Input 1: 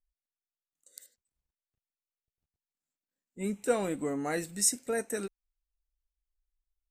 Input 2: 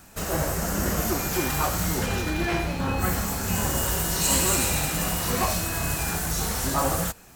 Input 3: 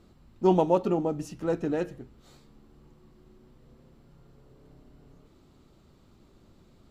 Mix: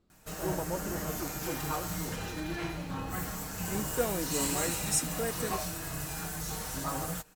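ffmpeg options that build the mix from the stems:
-filter_complex "[0:a]adelay=300,volume=0.708[s0];[1:a]aecho=1:1:6.5:0.55,adelay=100,volume=0.282[s1];[2:a]volume=0.2[s2];[s0][s1][s2]amix=inputs=3:normalize=0"

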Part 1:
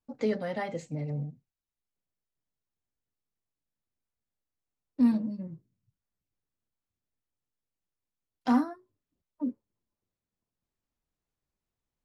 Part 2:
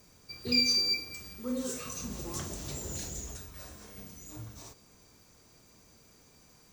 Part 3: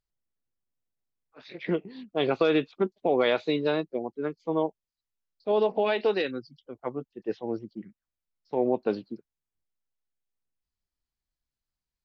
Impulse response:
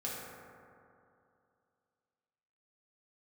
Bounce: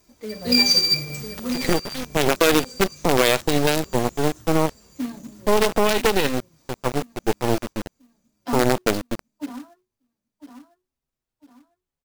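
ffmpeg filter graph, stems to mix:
-filter_complex "[0:a]asplit=2[s0][s1];[s1]adelay=6,afreqshift=-0.88[s2];[s0][s2]amix=inputs=2:normalize=1,volume=0.224,asplit=2[s3][s4];[s4]volume=0.447[s5];[1:a]flanger=delay=2.9:depth=3:regen=24:speed=0.46:shape=sinusoidal,volume=1.26,asplit=2[s6][s7];[s7]volume=0.126[s8];[2:a]acrusher=bits=4:dc=4:mix=0:aa=0.000001,volume=0.708,asplit=2[s9][s10];[s10]apad=whole_len=296440[s11];[s6][s11]sidechaincompress=threshold=0.00631:ratio=12:attack=11:release=947[s12];[s3][s9]amix=inputs=2:normalize=0,acontrast=30,alimiter=limit=0.141:level=0:latency=1:release=49,volume=1[s13];[s5][s8]amix=inputs=2:normalize=0,aecho=0:1:1002|2004|3006|4008|5010:1|0.38|0.144|0.0549|0.0209[s14];[s12][s13][s14]amix=inputs=3:normalize=0,dynaudnorm=f=150:g=5:m=3.55,acrusher=bits=3:mode=log:mix=0:aa=0.000001"

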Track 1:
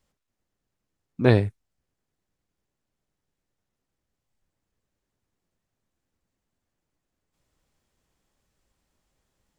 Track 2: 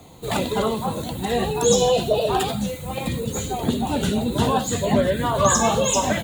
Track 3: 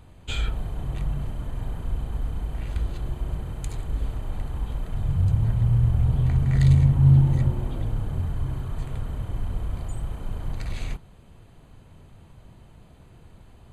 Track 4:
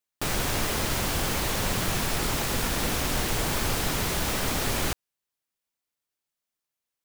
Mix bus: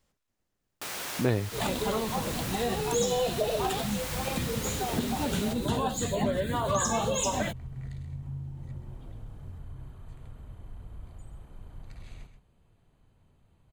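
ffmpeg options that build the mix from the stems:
-filter_complex "[0:a]volume=1.12[s0];[1:a]adelay=1300,volume=0.708[s1];[2:a]acompressor=threshold=0.1:ratio=6,adelay=1300,volume=0.168,asplit=2[s2][s3];[s3]volume=0.316[s4];[3:a]highpass=f=710:p=1,adelay=600,volume=0.473,asplit=2[s5][s6];[s6]volume=0.355[s7];[s4][s7]amix=inputs=2:normalize=0,aecho=0:1:130:1[s8];[s0][s1][s2][s5][s8]amix=inputs=5:normalize=0,acompressor=threshold=0.0355:ratio=2"

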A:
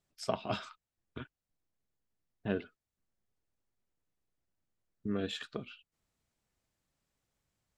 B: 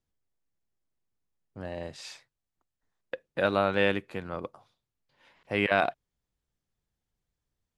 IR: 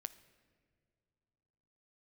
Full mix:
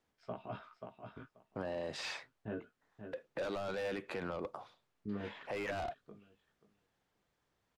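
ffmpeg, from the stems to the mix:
-filter_complex "[0:a]lowpass=1800,flanger=delay=16:depth=3.3:speed=0.28,volume=0.668,asplit=2[s0][s1];[s1]volume=0.376[s2];[1:a]asplit=2[s3][s4];[s4]highpass=f=720:p=1,volume=22.4,asoftclip=type=tanh:threshold=0.398[s5];[s3][s5]amix=inputs=2:normalize=0,lowpass=f=1400:p=1,volume=0.501,volume=0.501[s6];[s2]aecho=0:1:533|1066|1599:1|0.15|0.0225[s7];[s0][s6][s7]amix=inputs=3:normalize=0,acrossover=split=520|3300[s8][s9][s10];[s8]acompressor=threshold=0.02:ratio=4[s11];[s9]acompressor=threshold=0.0112:ratio=4[s12];[s10]acompressor=threshold=0.00501:ratio=4[s13];[s11][s12][s13]amix=inputs=3:normalize=0,alimiter=level_in=2.11:limit=0.0631:level=0:latency=1:release=30,volume=0.473"

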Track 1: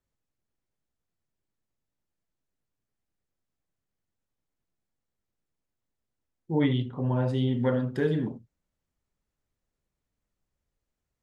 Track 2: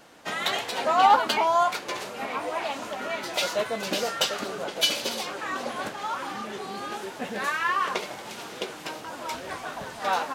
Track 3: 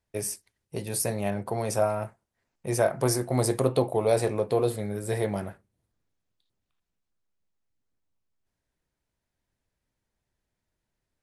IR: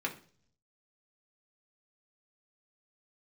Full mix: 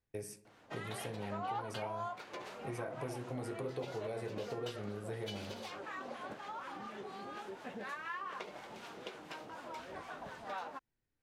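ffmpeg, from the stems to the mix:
-filter_complex "[1:a]acrossover=split=860[s0][s1];[s0]aeval=exprs='val(0)*(1-0.5/2+0.5/2*cos(2*PI*4.1*n/s))':c=same[s2];[s1]aeval=exprs='val(0)*(1-0.5/2-0.5/2*cos(2*PI*4.1*n/s))':c=same[s3];[s2][s3]amix=inputs=2:normalize=0,adelay=450,volume=0.447[s4];[2:a]volume=0.596,asplit=2[s5][s6];[s6]volume=0.398[s7];[s5]equalizer=f=990:t=o:w=2:g=-10.5,acompressor=threshold=0.02:ratio=6,volume=1[s8];[3:a]atrim=start_sample=2205[s9];[s7][s9]afir=irnorm=-1:irlink=0[s10];[s4][s8][s10]amix=inputs=3:normalize=0,highshelf=f=4300:g=-11.5,acompressor=threshold=0.00794:ratio=2.5"

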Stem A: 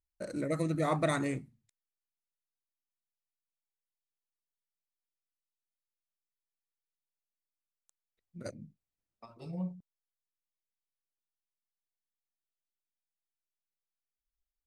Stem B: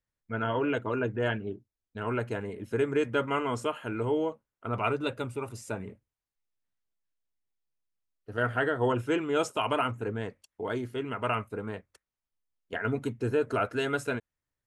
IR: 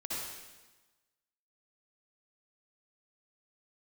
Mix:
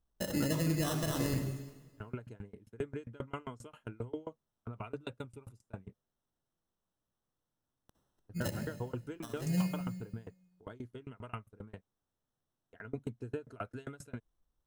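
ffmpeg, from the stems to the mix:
-filter_complex "[0:a]acrusher=samples=19:mix=1:aa=0.000001,acompressor=threshold=0.0224:ratio=6,volume=1,asplit=2[s0][s1];[s1]volume=0.447[s2];[1:a]highshelf=f=3300:g=-6,agate=range=0.0501:threshold=0.00891:ratio=16:detection=peak,aeval=exprs='val(0)*pow(10,-29*if(lt(mod(7.5*n/s,1),2*abs(7.5)/1000),1-mod(7.5*n/s,1)/(2*abs(7.5)/1000),(mod(7.5*n/s,1)-2*abs(7.5)/1000)/(1-2*abs(7.5)/1000))/20)':c=same,volume=0.398[s3];[2:a]atrim=start_sample=2205[s4];[s2][s4]afir=irnorm=-1:irlink=0[s5];[s0][s3][s5]amix=inputs=3:normalize=0,bass=f=250:g=9,treble=f=4000:g=8,alimiter=limit=0.0794:level=0:latency=1:release=311"

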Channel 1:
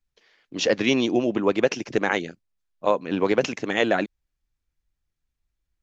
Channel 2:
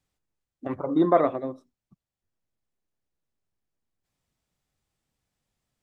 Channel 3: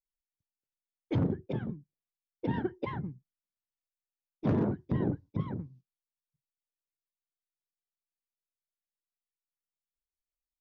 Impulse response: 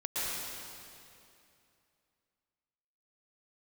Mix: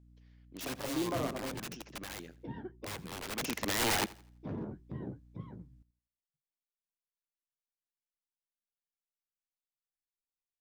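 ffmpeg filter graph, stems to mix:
-filter_complex "[0:a]aeval=exprs='(mod(10.6*val(0)+1,2)-1)/10.6':c=same,volume=0.631,afade=t=in:st=3.28:d=0.27:silence=0.266073,asplit=2[s0][s1];[s1]volume=0.0944[s2];[1:a]alimiter=limit=0.178:level=0:latency=1,aeval=exprs='val(0)+0.00398*(sin(2*PI*60*n/s)+sin(2*PI*2*60*n/s)/2+sin(2*PI*3*60*n/s)/3+sin(2*PI*4*60*n/s)/4+sin(2*PI*5*60*n/s)/5)':c=same,volume=0.282,asplit=2[s3][s4];[s4]volume=0.141[s5];[2:a]flanger=delay=8.5:depth=8.1:regen=-38:speed=0.27:shape=sinusoidal,volume=0.398[s6];[s2][s5]amix=inputs=2:normalize=0,aecho=0:1:84|168|252|336|420:1|0.32|0.102|0.0328|0.0105[s7];[s0][s3][s6][s7]amix=inputs=4:normalize=0"

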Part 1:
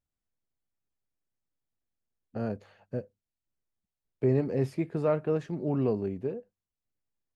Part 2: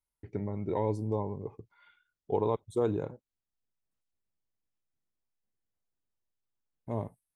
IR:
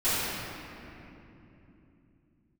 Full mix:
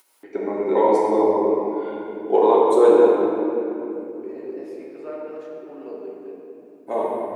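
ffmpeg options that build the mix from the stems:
-filter_complex "[0:a]volume=0.316,asplit=2[s0][s1];[s1]volume=0.316[s2];[1:a]acontrast=80,volume=1.26,asplit=3[s3][s4][s5];[s4]volume=0.473[s6];[s5]apad=whole_len=324344[s7];[s0][s7]sidechaincompress=threshold=0.01:ratio=8:attack=16:release=1180[s8];[2:a]atrim=start_sample=2205[s9];[s2][s6]amix=inputs=2:normalize=0[s10];[s10][s9]afir=irnorm=-1:irlink=0[s11];[s8][s3][s11]amix=inputs=3:normalize=0,acompressor=mode=upward:threshold=0.00794:ratio=2.5,highpass=f=340:w=0.5412,highpass=f=340:w=1.3066"

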